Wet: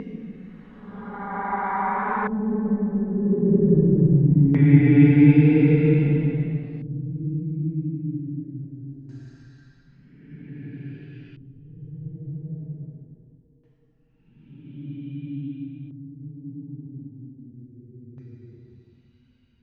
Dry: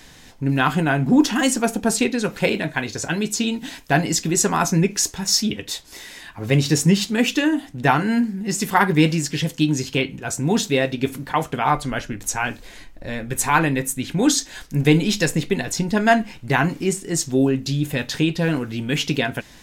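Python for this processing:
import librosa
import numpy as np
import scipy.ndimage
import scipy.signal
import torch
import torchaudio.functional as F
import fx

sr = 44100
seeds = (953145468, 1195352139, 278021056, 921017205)

y = fx.spec_quant(x, sr, step_db=15)
y = fx.doppler_pass(y, sr, speed_mps=27, closest_m=1.5, pass_at_s=8.23)
y = fx.tilt_eq(y, sr, slope=-2.5)
y = fx.paulstretch(y, sr, seeds[0], factor=15.0, window_s=0.1, from_s=7.96)
y = fx.filter_lfo_lowpass(y, sr, shape='square', hz=0.22, low_hz=360.0, high_hz=1800.0, q=0.83)
y = F.gain(torch.from_numpy(y), -1.0).numpy()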